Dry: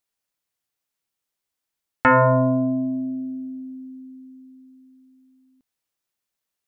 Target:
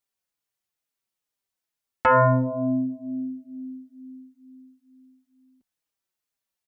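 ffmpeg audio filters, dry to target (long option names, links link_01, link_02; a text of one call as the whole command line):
ffmpeg -i in.wav -filter_complex "[0:a]asplit=2[link_01][link_02];[link_02]adelay=4.5,afreqshift=-2.2[link_03];[link_01][link_03]amix=inputs=2:normalize=1" out.wav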